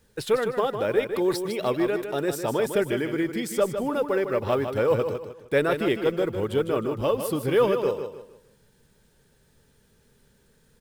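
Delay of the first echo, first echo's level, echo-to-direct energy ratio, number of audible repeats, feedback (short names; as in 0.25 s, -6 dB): 0.154 s, -8.0 dB, -7.5 dB, 3, 33%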